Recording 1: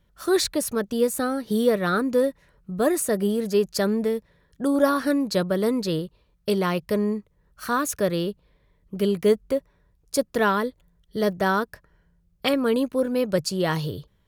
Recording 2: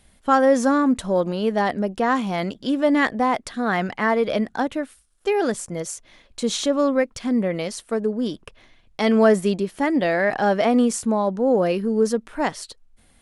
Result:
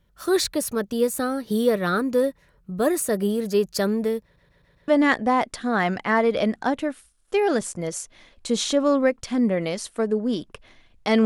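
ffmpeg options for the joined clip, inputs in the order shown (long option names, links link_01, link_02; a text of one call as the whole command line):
ffmpeg -i cue0.wav -i cue1.wav -filter_complex "[0:a]apad=whole_dur=11.25,atrim=end=11.25,asplit=5[link_01][link_02][link_03][link_04][link_05];[link_01]atrim=end=4.362[link_06];[link_02]atrim=start=4.228:end=4.362[link_07];[link_03]atrim=start=4.228:end=4.362[link_08];[link_04]atrim=start=4.228:end=4.362[link_09];[link_05]atrim=start=4.228:end=4.362[link_10];[1:a]atrim=start=2.808:end=9.18[link_11];[link_06][link_07]acrossfade=duration=0.004:curve1=hsin:curve2=hsin[link_12];[link_12][link_08]acrossfade=duration=0.004:curve1=hsin:curve2=hsin[link_13];[link_13][link_09]acrossfade=duration=0.004:curve1=hsin:curve2=hsin[link_14];[link_14][link_10]acrossfade=duration=0.004:curve1=hsin:curve2=hsin[link_15];[link_15][link_11]acrossfade=duration=0.004:curve1=hsin:curve2=hsin" out.wav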